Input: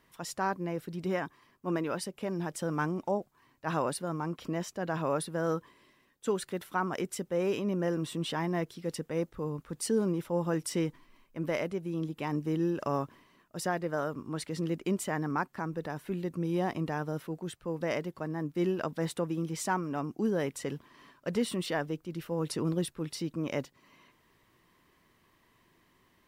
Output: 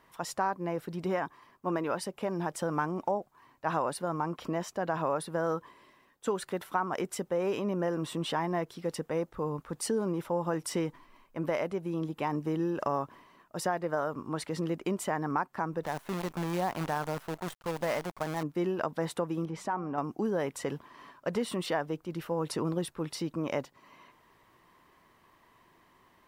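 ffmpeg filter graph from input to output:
-filter_complex "[0:a]asettb=1/sr,asplit=3[s0][s1][s2];[s0]atrim=end=15.834[s3];[s1]atrim=start=15.83:end=18.43,asetpts=PTS-STARTPTS,afade=t=in:d=0.004:c=qsin,afade=t=out:st=2.596:d=0.004:c=qsin,equalizer=f=350:t=o:w=0.83:g=-5,acrusher=bits=7:dc=4:mix=0:aa=0.000001[s4];[s2]atrim=start=18.426[s5];[s3][s4]acrossfade=d=0.004:c1=hsin:c2=qsin[s6];[s6][s5]acrossfade=d=0.004:c1=qsin:c2=hsin,asettb=1/sr,asplit=3[s7][s8][s9];[s7]atrim=end=19.454[s10];[s8]atrim=start=19.45:end=19.98,asetpts=PTS-STARTPTS,afade=t=in:d=0.004:c=qsin,afade=t=out:st=0.526:d=0.004:c=qsin,lowpass=f=1800:p=1,bandreject=f=189.9:t=h:w=4,bandreject=f=379.8:t=h:w=4,bandreject=f=569.7:t=h:w=4,bandreject=f=759.6:t=h:w=4,acompressor=threshold=0.02:ratio=2.5:attack=3.2:release=140:knee=1:detection=peak[s11];[s9]atrim=start=19.976[s12];[s10][s11]acrossfade=d=0.004:c1=hsin:c2=qsin[s13];[s13][s12]acrossfade=d=0.004:c1=qsin:c2=hsin,equalizer=f=880:t=o:w=1.7:g=8.5,acompressor=threshold=0.0398:ratio=2.5"

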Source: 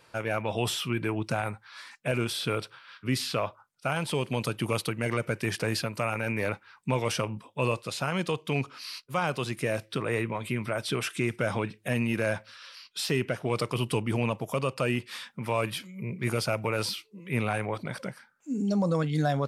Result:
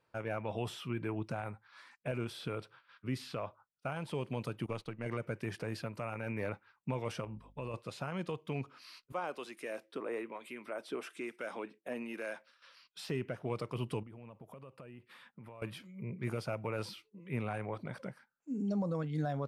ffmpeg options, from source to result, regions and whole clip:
-filter_complex "[0:a]asettb=1/sr,asplit=3[s0][s1][s2];[s0]atrim=end=4.664[s3];[s1]atrim=start=4.66:end=5.06,asetpts=PTS-STARTPTS,afade=t=in:d=0.004:c=qsin,afade=t=out:st=0.396:d=0.004:c=qsin,aeval=exprs='if(lt(val(0),0),0.708*val(0),val(0))':c=same,agate=range=0.0224:threshold=0.0178:ratio=3:release=100:detection=peak,lowpass=7400[s4];[s2]atrim=start=5.056[s5];[s3][s4]acrossfade=d=0.004:c1=hsin:c2=qsin[s6];[s6][s5]acrossfade=d=0.004:c1=qsin:c2=hsin,asettb=1/sr,asplit=3[s7][s8][s9];[s7]atrim=end=7.244[s10];[s8]atrim=start=7.24:end=7.74,asetpts=PTS-STARTPTS,afade=t=in:d=0.004:c=qsin,afade=t=out:st=0.496:d=0.004:c=qsin,acompressor=threshold=0.0355:ratio=6:attack=3.2:release=140:knee=1:detection=peak,aeval=exprs='val(0)+0.00282*(sin(2*PI*50*n/s)+sin(2*PI*2*50*n/s)/2+sin(2*PI*3*50*n/s)/3+sin(2*PI*4*50*n/s)/4+sin(2*PI*5*50*n/s)/5)':c=same[s11];[s9]atrim=start=7.736[s12];[s10][s11]acrossfade=d=0.004:c1=hsin:c2=qsin[s13];[s13][s12]acrossfade=d=0.004:c1=qsin:c2=hsin,asettb=1/sr,asplit=3[s14][s15][s16];[s14]atrim=end=9.124[s17];[s15]atrim=start=9.12:end=12.62,asetpts=PTS-STARTPTS,afade=t=in:d=0.004:c=qsin,afade=t=out:st=3.496:d=0.004:c=qsin,highpass=f=260:w=0.5412,highpass=f=260:w=1.3066,highshelf=f=5900:g=4,acrossover=split=1300[s18][s19];[s18]aeval=exprs='val(0)*(1-0.5/2+0.5/2*cos(2*PI*1.1*n/s))':c=same[s20];[s19]aeval=exprs='val(0)*(1-0.5/2-0.5/2*cos(2*PI*1.1*n/s))':c=same[s21];[s20][s21]amix=inputs=2:normalize=0[s22];[s16]atrim=start=12.616[s23];[s17][s22]acrossfade=d=0.004:c1=hsin:c2=qsin[s24];[s24][s23]acrossfade=d=0.004:c1=qsin:c2=hsin,asettb=1/sr,asplit=3[s25][s26][s27];[s25]atrim=end=14.034[s28];[s26]atrim=start=14.03:end=15.62,asetpts=PTS-STARTPTS,afade=t=in:d=0.004:c=qsin,afade=t=out:st=1.586:d=0.004:c=qsin,equalizer=f=5900:w=1.2:g=-10,acompressor=threshold=0.00891:ratio=6:attack=3.2:release=140:knee=1:detection=peak[s29];[s27]atrim=start=15.616[s30];[s28][s29]acrossfade=d=0.004:c1=hsin:c2=qsin[s31];[s31][s30]acrossfade=d=0.004:c1=qsin:c2=hsin,agate=range=0.355:threshold=0.00355:ratio=16:detection=peak,highshelf=f=2500:g=-11,alimiter=limit=0.106:level=0:latency=1:release=331,volume=0.473"

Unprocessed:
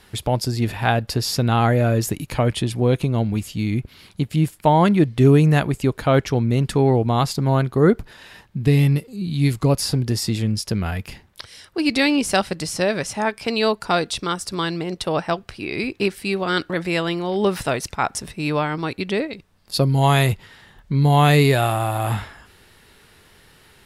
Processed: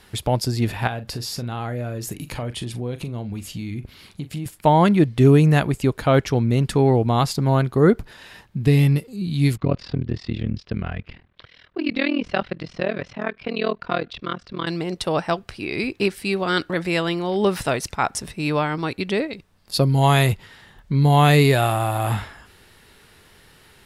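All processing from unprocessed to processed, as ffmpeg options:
-filter_complex "[0:a]asettb=1/sr,asplit=3[s0][s1][s2];[s0]atrim=end=0.874[s3];[s1]atrim=start=0.87:end=4.46,asetpts=PTS-STARTPTS,afade=t=in:d=0.004:c=qsin,afade=t=out:st=3.586:d=0.004:c=qsin,acompressor=threshold=0.0398:ratio=3:attack=3.2:release=140:knee=1:detection=peak,asplit=2[s4][s5];[s5]adelay=41,volume=0.237[s6];[s4][s6]amix=inputs=2:normalize=0,atrim=end_sample=158319[s7];[s2]atrim=start=4.456[s8];[s3][s7]acrossfade=d=0.004:c1=hsin:c2=qsin[s9];[s9][s8]acrossfade=d=0.004:c1=qsin:c2=hsin,asettb=1/sr,asplit=3[s10][s11][s12];[s10]atrim=end=9.574[s13];[s11]atrim=start=9.57:end=14.67,asetpts=PTS-STARTPTS,afade=t=in:d=0.004:c=qsin,afade=t=out:st=5.096:d=0.004:c=qsin,lowpass=f=3500:w=0.5412,lowpass=f=3500:w=1.3066,bandreject=f=860:w=7.3,tremolo=f=40:d=0.947[s14];[s12]atrim=start=14.666[s15];[s13][s14]acrossfade=d=0.004:c1=hsin:c2=qsin[s16];[s16][s15]acrossfade=d=0.004:c1=qsin:c2=hsin"

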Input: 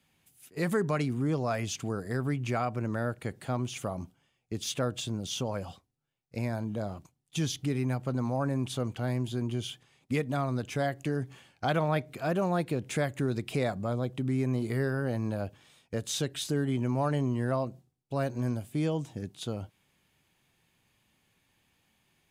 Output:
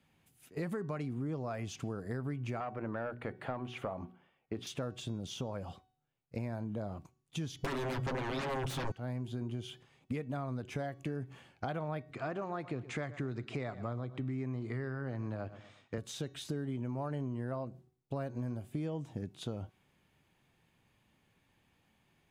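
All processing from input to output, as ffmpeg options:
-filter_complex "[0:a]asettb=1/sr,asplit=3[s0][s1][s2];[s0]atrim=end=2.604[s3];[s1]atrim=start=2.6:end=4.67,asetpts=PTS-STARTPTS,afade=t=in:d=0.004:c=qsin,afade=t=out:st=2.066:d=0.004:c=qsin,equalizer=f=7000:t=o:w=1.2:g=-10.5,asplit=2[s4][s5];[s5]highpass=f=720:p=1,volume=4.47,asoftclip=type=tanh:threshold=0.119[s6];[s4][s6]amix=inputs=2:normalize=0,lowpass=f=2000:p=1,volume=0.501,bandreject=f=60:t=h:w=6,bandreject=f=120:t=h:w=6,bandreject=f=180:t=h:w=6,bandreject=f=240:t=h:w=6,bandreject=f=300:t=h:w=6,bandreject=f=360:t=h:w=6,bandreject=f=420:t=h:w=6[s7];[s2]atrim=start=4.666[s8];[s3][s7]acrossfade=d=0.004:c1=hsin:c2=qsin[s9];[s9][s8]acrossfade=d=0.004:c1=qsin:c2=hsin,asettb=1/sr,asplit=3[s10][s11][s12];[s10]atrim=end=7.644[s13];[s11]atrim=start=7.64:end=8.92,asetpts=PTS-STARTPTS,afade=t=in:d=0.004:c=qsin,afade=t=out:st=1.276:d=0.004:c=qsin,aeval=exprs='0.1*sin(PI/2*7.08*val(0)/0.1)':c=same,aecho=1:1:7.4:0.53,atrim=end_sample=56448[s14];[s12]atrim=start=8.916[s15];[s13][s14]acrossfade=d=0.004:c1=hsin:c2=qsin[s16];[s16][s15]acrossfade=d=0.004:c1=qsin:c2=hsin,asettb=1/sr,asplit=3[s17][s18][s19];[s17]atrim=end=12.114[s20];[s18]atrim=start=12.11:end=15.98,asetpts=PTS-STARTPTS,afade=t=in:d=0.004:c=qsin,afade=t=out:st=3.866:d=0.004:c=qsin,highpass=110,equalizer=f=120:t=q:w=4:g=5,equalizer=f=180:t=q:w=4:g=-8,equalizer=f=520:t=q:w=4:g=-4,equalizer=f=1200:t=q:w=4:g=5,equalizer=f=2000:t=q:w=4:g=5,lowpass=f=7600:w=0.5412,lowpass=f=7600:w=1.3066,aecho=1:1:119|238|357:0.126|0.0516|0.0212,atrim=end_sample=170667[s21];[s19]atrim=start=15.976[s22];[s20][s21]acrossfade=d=0.004:c1=hsin:c2=qsin[s23];[s23][s22]acrossfade=d=0.004:c1=qsin:c2=hsin,acompressor=threshold=0.0158:ratio=6,highshelf=f=2900:g=-10,bandreject=f=374.1:t=h:w=4,bandreject=f=748.2:t=h:w=4,bandreject=f=1122.3:t=h:w=4,bandreject=f=1496.4:t=h:w=4,bandreject=f=1870.5:t=h:w=4,bandreject=f=2244.6:t=h:w=4,bandreject=f=2618.7:t=h:w=4,bandreject=f=2992.8:t=h:w=4,bandreject=f=3366.9:t=h:w=4,bandreject=f=3741:t=h:w=4,bandreject=f=4115.1:t=h:w=4,bandreject=f=4489.2:t=h:w=4,bandreject=f=4863.3:t=h:w=4,bandreject=f=5237.4:t=h:w=4,bandreject=f=5611.5:t=h:w=4,bandreject=f=5985.6:t=h:w=4,bandreject=f=6359.7:t=h:w=4,bandreject=f=6733.8:t=h:w=4,bandreject=f=7107.9:t=h:w=4,volume=1.19"

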